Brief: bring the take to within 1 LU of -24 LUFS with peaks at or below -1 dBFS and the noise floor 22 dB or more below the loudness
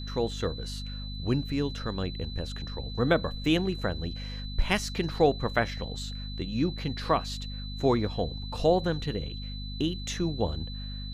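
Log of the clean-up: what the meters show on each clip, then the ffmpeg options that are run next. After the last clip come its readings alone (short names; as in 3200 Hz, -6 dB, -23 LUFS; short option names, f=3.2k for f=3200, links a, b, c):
hum 50 Hz; harmonics up to 250 Hz; hum level -35 dBFS; steady tone 4000 Hz; tone level -42 dBFS; loudness -30.0 LUFS; peak -9.5 dBFS; loudness target -24.0 LUFS
-> -af "bandreject=f=50:t=h:w=6,bandreject=f=100:t=h:w=6,bandreject=f=150:t=h:w=6,bandreject=f=200:t=h:w=6,bandreject=f=250:t=h:w=6"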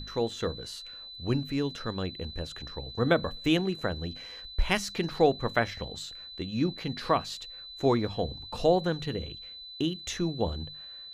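hum none; steady tone 4000 Hz; tone level -42 dBFS
-> -af "bandreject=f=4k:w=30"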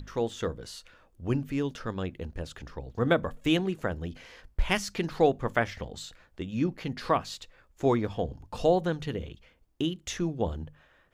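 steady tone none; loudness -30.5 LUFS; peak -10.0 dBFS; loudness target -24.0 LUFS
-> -af "volume=6.5dB"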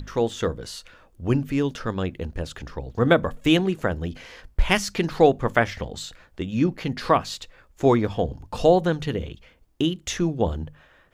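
loudness -24.0 LUFS; peak -3.5 dBFS; noise floor -57 dBFS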